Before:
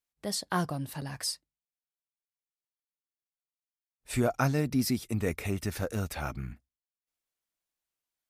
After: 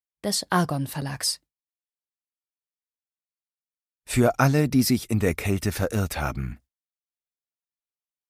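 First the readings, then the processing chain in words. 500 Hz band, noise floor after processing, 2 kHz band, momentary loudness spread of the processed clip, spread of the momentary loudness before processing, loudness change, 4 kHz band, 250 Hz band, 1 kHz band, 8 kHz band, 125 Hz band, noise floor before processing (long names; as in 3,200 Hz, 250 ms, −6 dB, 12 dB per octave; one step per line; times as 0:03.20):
+7.5 dB, below −85 dBFS, +7.5 dB, 10 LU, 10 LU, +7.5 dB, +7.5 dB, +7.5 dB, +7.5 dB, +7.5 dB, +7.5 dB, below −85 dBFS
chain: noise gate with hold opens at −51 dBFS
level +7.5 dB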